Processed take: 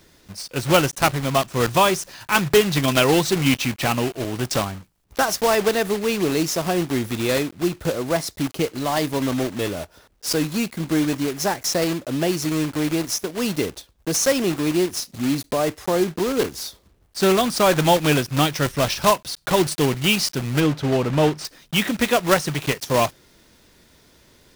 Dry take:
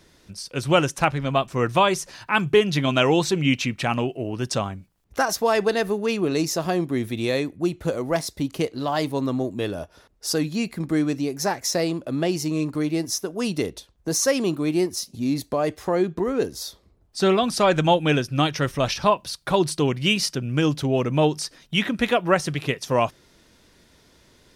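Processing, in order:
one scale factor per block 3 bits
0:20.60–0:21.45: low-pass filter 2,800 Hz 6 dB per octave
level +1.5 dB

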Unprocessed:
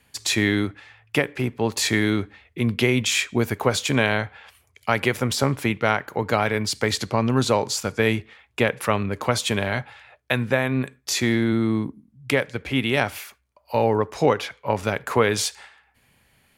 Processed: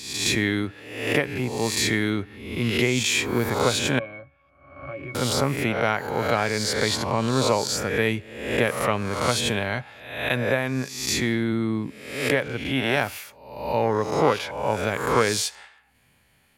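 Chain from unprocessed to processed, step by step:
peak hold with a rise ahead of every peak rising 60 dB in 0.81 s
0:03.99–0:05.15: resonances in every octave C#, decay 0.12 s
level −3.5 dB

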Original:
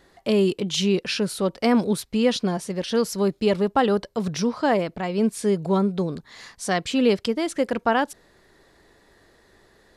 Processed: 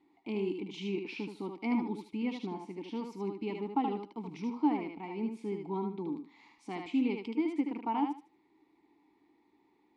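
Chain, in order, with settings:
formant filter u
feedback echo with a high-pass in the loop 76 ms, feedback 22%, high-pass 300 Hz, level −4 dB

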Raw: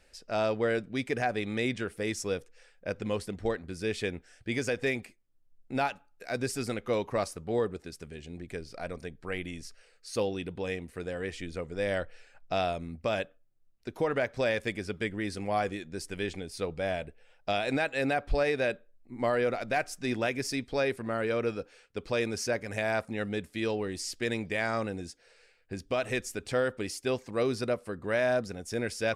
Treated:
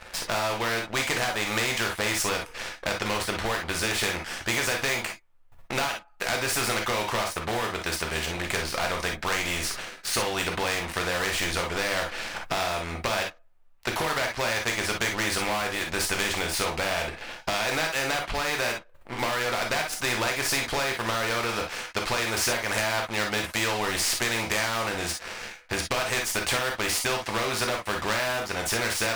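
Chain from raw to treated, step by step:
drawn EQ curve 100 Hz 0 dB, 230 Hz −10 dB, 990 Hz +12 dB, 2,600 Hz +5 dB, 5,400 Hz −5 dB
downward compressor 6 to 1, threshold −33 dBFS, peak gain reduction 16.5 dB
leveller curve on the samples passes 3
reverb whose tail is shaped and stops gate 80 ms flat, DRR 2 dB
every bin compressed towards the loudest bin 2 to 1

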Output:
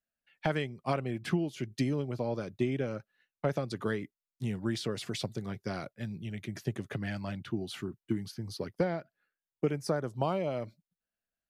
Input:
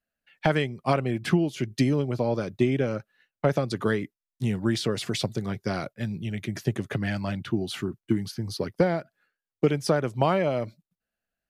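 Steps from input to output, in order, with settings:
0:08.83–0:10.47: parametric band 11,000 Hz → 1,500 Hz −14 dB 0.48 octaves
level −7.5 dB

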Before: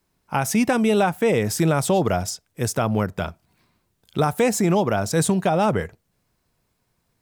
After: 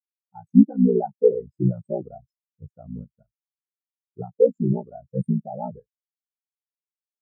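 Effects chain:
ring modulation 30 Hz
every bin expanded away from the loudest bin 4 to 1
level +7 dB

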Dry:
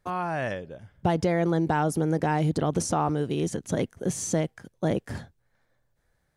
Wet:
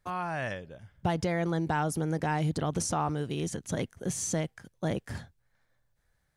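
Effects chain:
parametric band 380 Hz −6 dB 2.4 octaves
level −1 dB

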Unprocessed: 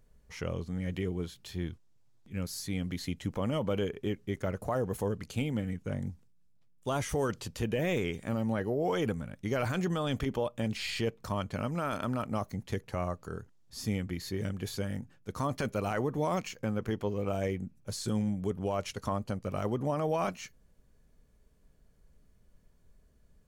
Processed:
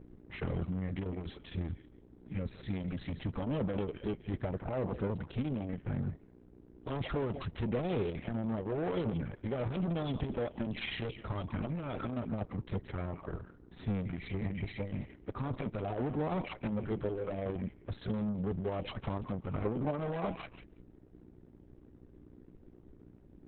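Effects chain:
0:14.20–0:14.96: healed spectral selection 900–3,600 Hz before
0:16.30–0:17.46: mains-hum notches 50/100/150/200/250/300/350 Hz
feedback echo with a high-pass in the loop 166 ms, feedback 17%, high-pass 990 Hz, level −10.5 dB
flanger swept by the level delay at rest 9.6 ms, full sweep at −28.5 dBFS
hum with harmonics 60 Hz, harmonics 7, −59 dBFS −2 dB per octave
in parallel at −4 dB: soft clipping −37.5 dBFS, distortion −7 dB
on the sum: leveller curve on the samples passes 2
high-frequency loss of the air 280 metres
level −4.5 dB
Opus 6 kbit/s 48,000 Hz

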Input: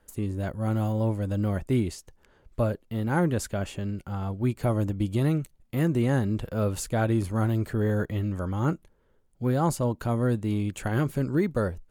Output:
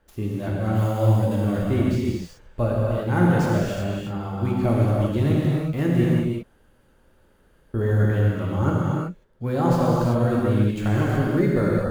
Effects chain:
running median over 5 samples
0:00.73–0:01.45: high-shelf EQ 4,700 Hz +10 dB
0:06.04–0:07.74: fill with room tone
reverb whose tail is shaped and stops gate 400 ms flat, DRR −4.5 dB

